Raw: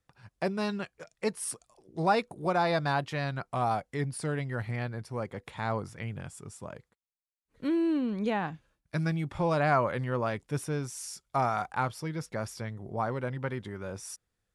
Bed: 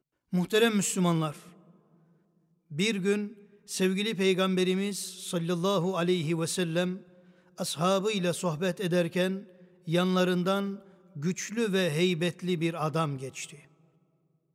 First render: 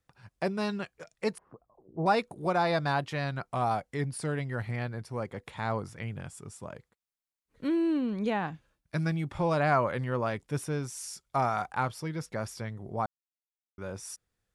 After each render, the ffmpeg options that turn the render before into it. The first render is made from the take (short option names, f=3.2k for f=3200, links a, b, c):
-filter_complex "[0:a]asettb=1/sr,asplit=3[a][b][c];[a]atrim=end=1.384[d];[b]atrim=start=1.38:end=2.06,asetpts=PTS-STARTPTS,afade=t=in:d=0.004:c=qsin,afade=t=out:st=0.676:d=0.004:c=qsin,lowpass=f=1.1k:w=0.5412,lowpass=f=1.1k:w=1.3066[e];[c]atrim=start=2.056[f];[d][e]acrossfade=d=0.004:c1=hsin:c2=qsin[g];[g][f]acrossfade=d=0.004:c1=qsin:c2=hsin,asplit=3[h][i][j];[h]atrim=end=13.06,asetpts=PTS-STARTPTS,afade=t=out:st=13.056:d=0.004:c=hsin[k];[i]atrim=start=13.06:end=13.78,asetpts=PTS-STARTPTS,volume=0[l];[j]atrim=start=13.78,asetpts=PTS-STARTPTS,afade=t=in:d=0.004:c=hsin[m];[k][l][m]concat=n=3:v=0:a=1"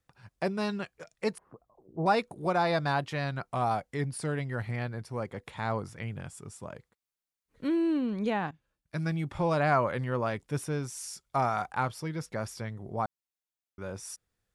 -filter_complex "[0:a]asplit=2[a][b];[a]atrim=end=8.51,asetpts=PTS-STARTPTS,afade=t=out:st=8.506:d=0.004:c=hsin:silence=0.149624[c];[b]atrim=start=8.51,asetpts=PTS-STARTPTS,afade=t=in:d=0.69:silence=0.149624[d];[c][d]concat=n=2:v=0:a=1"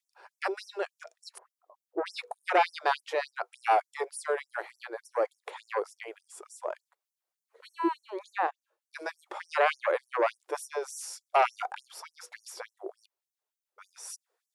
-filter_complex "[0:a]acrossover=split=1100[a][b];[a]aeval=exprs='0.126*sin(PI/2*2.51*val(0)/0.126)':c=same[c];[c][b]amix=inputs=2:normalize=0,afftfilt=real='re*gte(b*sr/1024,310*pow(5500/310,0.5+0.5*sin(2*PI*3.4*pts/sr)))':imag='im*gte(b*sr/1024,310*pow(5500/310,0.5+0.5*sin(2*PI*3.4*pts/sr)))':win_size=1024:overlap=0.75"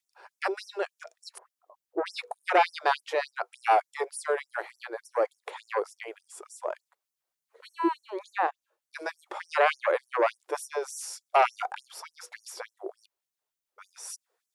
-af "volume=2dB"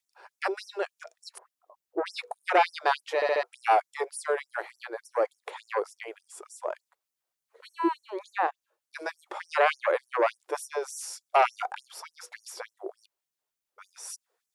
-filter_complex "[0:a]asplit=5[a][b][c][d][e];[a]atrim=end=3.222[f];[b]atrim=start=3.148:end=3.222[g];[c]atrim=start=3.148:end=3.222[h];[d]atrim=start=3.148:end=3.222[i];[e]atrim=start=3.428[j];[f][g]acrossfade=d=0.004:c1=hsin:c2=hsin[k];[k][h]acrossfade=d=0.004:c1=hsin:c2=hsin[l];[l][i]acrossfade=d=0.004:c1=hsin:c2=hsin[m];[m][j]acrossfade=d=0.004:c1=hsin:c2=hsin"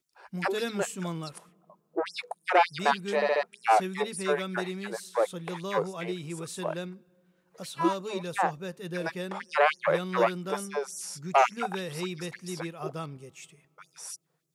-filter_complex "[1:a]volume=-8.5dB[a];[0:a][a]amix=inputs=2:normalize=0"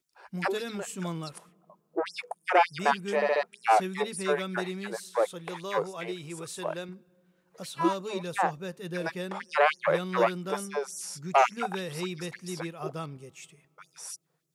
-filter_complex "[0:a]asettb=1/sr,asplit=3[a][b][c];[a]atrim=end=0.574[d];[b]atrim=start=0.57:end=0.98,asetpts=PTS-STARTPTS,afade=t=in:d=0.004:c=qsin,afade=t=out:st=0.406:d=0.004:c=qsin,acompressor=threshold=-31dB:ratio=6:attack=3.2:release=140:knee=1:detection=peak[e];[c]atrim=start=0.976[f];[d][e]acrossfade=d=0.004:c1=hsin:c2=qsin[g];[g][f]acrossfade=d=0.004:c1=qsin:c2=hsin,asettb=1/sr,asplit=3[h][i][j];[h]atrim=end=2.134[k];[i]atrim=start=2.13:end=3.33,asetpts=PTS-STARTPTS,afade=t=in:d=0.004:c=qsin,afade=t=out:st=1.196:d=0.004:c=qsin,equalizer=f=4k:w=7.5:g=-13[l];[j]atrim=start=3.326[m];[k][l]acrossfade=d=0.004:c1=hsin:c2=qsin[n];[n][m]acrossfade=d=0.004:c1=qsin:c2=hsin,asettb=1/sr,asplit=3[o][p][q];[o]atrim=end=5.284[r];[p]atrim=start=5.28:end=6.89,asetpts=PTS-STARTPTS,afade=t=in:d=0.004:c=qsin,afade=t=out:st=1.606:d=0.004:c=qsin,equalizer=f=210:w=1.7:g=-8[s];[q]atrim=start=6.886[t];[r][s]acrossfade=d=0.004:c1=hsin:c2=qsin[u];[u][t]acrossfade=d=0.004:c1=qsin:c2=hsin"